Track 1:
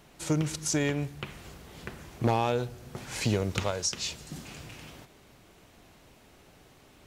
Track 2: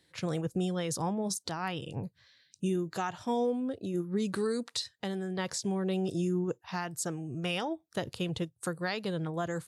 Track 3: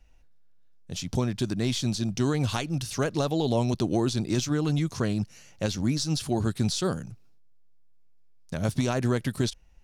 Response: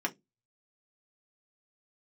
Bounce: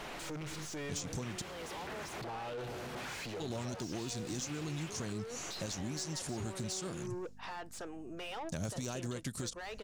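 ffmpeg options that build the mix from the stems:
-filter_complex "[0:a]alimiter=level_in=2dB:limit=-24dB:level=0:latency=1,volume=-2dB,asoftclip=type=tanh:threshold=-36dB,volume=-2dB[link_01];[1:a]highpass=280,aeval=exprs='val(0)+0.00501*(sin(2*PI*50*n/s)+sin(2*PI*2*50*n/s)/2+sin(2*PI*3*50*n/s)/3+sin(2*PI*4*50*n/s)/4+sin(2*PI*5*50*n/s)/5)':channel_layout=same,adelay=750,volume=-16dB[link_02];[2:a]equalizer=frequency=7100:width_type=o:width=0.88:gain=13.5,acompressor=threshold=-31dB:ratio=12,asoftclip=type=hard:threshold=-28dB,volume=0.5dB,asplit=3[link_03][link_04][link_05];[link_03]atrim=end=1.42,asetpts=PTS-STARTPTS,afade=type=out:start_time=1.416:duration=0.004:curve=hsin[link_06];[link_04]atrim=start=1.42:end=3.4,asetpts=PTS-STARTPTS,volume=0[link_07];[link_05]atrim=start=3.4,asetpts=PTS-STARTPTS,afade=type=in:duration=0.004:curve=hsin[link_08];[link_06][link_07][link_08]concat=n=3:v=0:a=1[link_09];[link_01][link_02]amix=inputs=2:normalize=0,asplit=2[link_10][link_11];[link_11]highpass=frequency=720:poles=1,volume=28dB,asoftclip=type=tanh:threshold=-31dB[link_12];[link_10][link_12]amix=inputs=2:normalize=0,lowpass=frequency=2400:poles=1,volume=-6dB,alimiter=level_in=13dB:limit=-24dB:level=0:latency=1:release=220,volume=-13dB,volume=0dB[link_13];[link_09][link_13]amix=inputs=2:normalize=0,alimiter=level_in=7dB:limit=-24dB:level=0:latency=1:release=245,volume=-7dB"

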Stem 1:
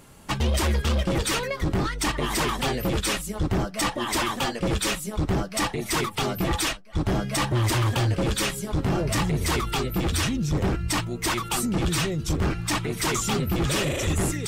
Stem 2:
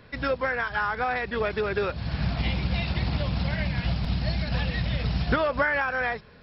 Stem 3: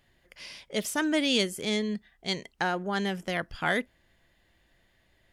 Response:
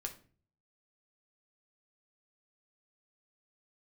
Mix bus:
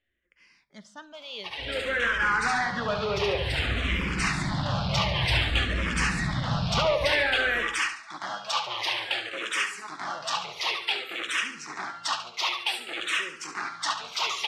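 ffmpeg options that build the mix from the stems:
-filter_complex "[0:a]highpass=910,acompressor=mode=upward:threshold=-38dB:ratio=2.5,adelay=1150,volume=1dB,asplit=3[link_01][link_02][link_03];[link_02]volume=-16.5dB[link_04];[link_03]volume=-8.5dB[link_05];[1:a]asoftclip=type=tanh:threshold=-25dB,dynaudnorm=framelen=100:gausssize=9:maxgain=10dB,adelay=1450,volume=-5.5dB,asplit=2[link_06][link_07];[link_07]volume=-6.5dB[link_08];[2:a]volume=-16.5dB,asplit=3[link_09][link_10][link_11];[link_10]volume=-3.5dB[link_12];[link_11]apad=whole_len=689184[link_13];[link_01][link_13]sidechaincompress=threshold=-48dB:ratio=8:attack=8.8:release=628[link_14];[3:a]atrim=start_sample=2205[link_15];[link_04][link_12]amix=inputs=2:normalize=0[link_16];[link_16][link_15]afir=irnorm=-1:irlink=0[link_17];[link_05][link_08]amix=inputs=2:normalize=0,aecho=0:1:71|142|213|284|355|426:1|0.42|0.176|0.0741|0.0311|0.0131[link_18];[link_14][link_06][link_09][link_17][link_18]amix=inputs=5:normalize=0,lowpass=3200,highshelf=frequency=2300:gain=9,asplit=2[link_19][link_20];[link_20]afreqshift=-0.54[link_21];[link_19][link_21]amix=inputs=2:normalize=1"

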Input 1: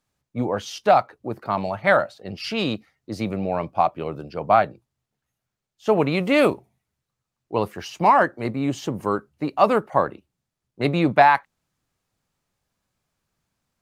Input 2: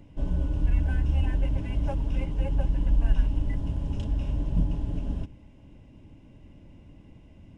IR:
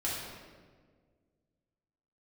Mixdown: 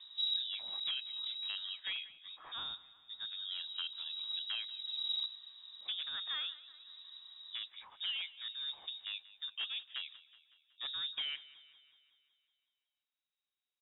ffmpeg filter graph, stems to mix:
-filter_complex "[0:a]acompressor=threshold=-17dB:ratio=12,aeval=exprs='0.2*(abs(mod(val(0)/0.2+3,4)-2)-1)':channel_layout=same,volume=-17.5dB,asplit=3[link_01][link_02][link_03];[link_02]volume=-18.5dB[link_04];[1:a]asoftclip=type=tanh:threshold=-27.5dB,volume=-3.5dB,asplit=3[link_05][link_06][link_07];[link_05]atrim=end=1.73,asetpts=PTS-STARTPTS,afade=type=out:start_time=1.726:duration=0.004:curve=hsin[link_08];[link_06]atrim=start=1.73:end=3.5,asetpts=PTS-STARTPTS,volume=0[link_09];[link_07]atrim=start=3.5,asetpts=PTS-STARTPTS,afade=type=in:duration=0.004:curve=hsin[link_10];[link_08][link_09][link_10]concat=n=3:v=0:a=1[link_11];[link_03]apad=whole_len=333957[link_12];[link_11][link_12]sidechaincompress=threshold=-50dB:ratio=12:attack=16:release=522[link_13];[link_04]aecho=0:1:186|372|558|744|930|1116|1302|1488|1674:1|0.58|0.336|0.195|0.113|0.0656|0.0381|0.0221|0.0128[link_14];[link_01][link_13][link_14]amix=inputs=3:normalize=0,lowpass=frequency=3300:width_type=q:width=0.5098,lowpass=frequency=3300:width_type=q:width=0.6013,lowpass=frequency=3300:width_type=q:width=0.9,lowpass=frequency=3300:width_type=q:width=2.563,afreqshift=-3900"

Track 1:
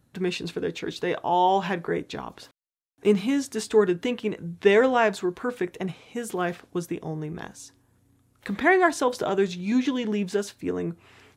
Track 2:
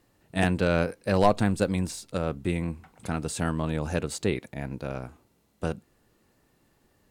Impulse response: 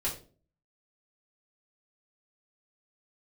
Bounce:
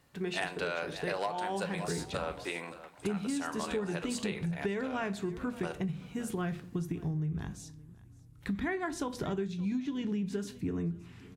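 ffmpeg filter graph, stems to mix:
-filter_complex "[0:a]asubboost=boost=7.5:cutoff=180,volume=-7.5dB,asplit=3[link_01][link_02][link_03];[link_02]volume=-12.5dB[link_04];[link_03]volume=-23dB[link_05];[1:a]highpass=670,highshelf=frequency=8200:gain=-5,volume=0dB,asplit=3[link_06][link_07][link_08];[link_07]volume=-11dB[link_09];[link_08]volume=-16dB[link_10];[2:a]atrim=start_sample=2205[link_11];[link_04][link_09]amix=inputs=2:normalize=0[link_12];[link_12][link_11]afir=irnorm=-1:irlink=0[link_13];[link_05][link_10]amix=inputs=2:normalize=0,aecho=0:1:569|1138|1707|2276:1|0.25|0.0625|0.0156[link_14];[link_01][link_06][link_13][link_14]amix=inputs=4:normalize=0,acompressor=threshold=-30dB:ratio=12"

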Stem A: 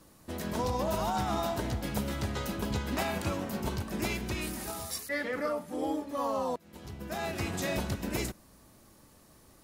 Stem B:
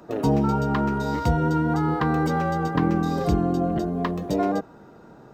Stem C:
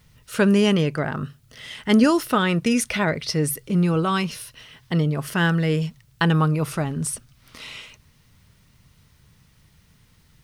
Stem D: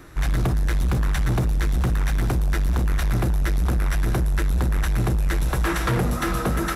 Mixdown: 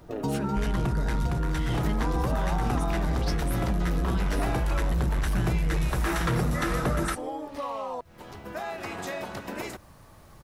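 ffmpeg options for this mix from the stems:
ffmpeg -i stem1.wav -i stem2.wav -i stem3.wav -i stem4.wav -filter_complex "[0:a]highpass=frequency=470:poles=1,equalizer=frequency=960:width=0.36:gain=12,adelay=1450,volume=-2.5dB[link_01];[1:a]volume=-6dB[link_02];[2:a]acompressor=threshold=-22dB:ratio=6,volume=-5.5dB[link_03];[3:a]lowpass=11000,adelay=400,volume=-1.5dB[link_04];[link_01][link_03]amix=inputs=2:normalize=0,lowshelf=frequency=200:gain=11.5,acompressor=threshold=-32dB:ratio=4,volume=0dB[link_05];[link_02][link_04]amix=inputs=2:normalize=0,acompressor=threshold=-24dB:ratio=6,volume=0dB[link_06];[link_05][link_06]amix=inputs=2:normalize=0" out.wav

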